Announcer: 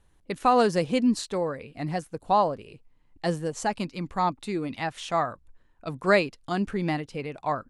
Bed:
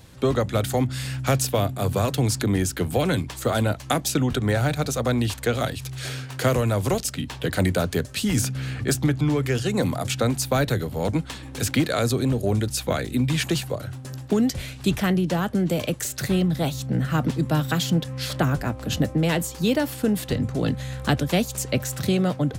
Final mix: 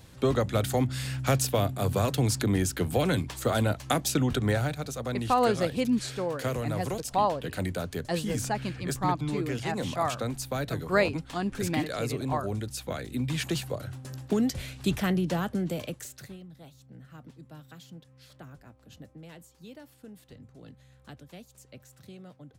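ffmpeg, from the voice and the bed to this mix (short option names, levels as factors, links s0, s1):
-filter_complex "[0:a]adelay=4850,volume=0.668[s0];[1:a]volume=1.19,afade=t=out:st=4.51:d=0.25:silence=0.473151,afade=t=in:st=12.96:d=0.8:silence=0.562341,afade=t=out:st=15.35:d=1.03:silence=0.0944061[s1];[s0][s1]amix=inputs=2:normalize=0"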